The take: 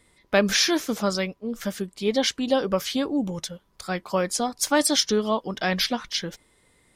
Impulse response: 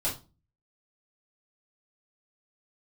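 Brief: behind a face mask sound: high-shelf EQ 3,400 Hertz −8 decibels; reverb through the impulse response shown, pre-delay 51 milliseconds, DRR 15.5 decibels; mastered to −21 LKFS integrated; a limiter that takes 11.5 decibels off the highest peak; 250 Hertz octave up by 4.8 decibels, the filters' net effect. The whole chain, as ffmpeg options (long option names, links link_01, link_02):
-filter_complex "[0:a]equalizer=frequency=250:width_type=o:gain=6,alimiter=limit=-17dB:level=0:latency=1,asplit=2[link_01][link_02];[1:a]atrim=start_sample=2205,adelay=51[link_03];[link_02][link_03]afir=irnorm=-1:irlink=0,volume=-22dB[link_04];[link_01][link_04]amix=inputs=2:normalize=0,highshelf=frequency=3400:gain=-8,volume=7dB"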